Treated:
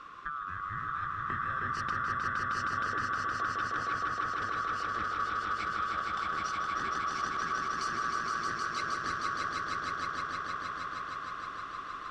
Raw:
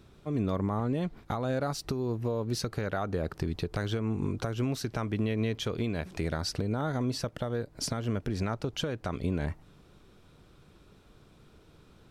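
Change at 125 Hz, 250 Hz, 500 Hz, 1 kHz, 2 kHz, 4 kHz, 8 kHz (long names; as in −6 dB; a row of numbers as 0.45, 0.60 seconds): −15.0, −15.0, −13.5, +10.0, +10.0, −3.0, −4.5 decibels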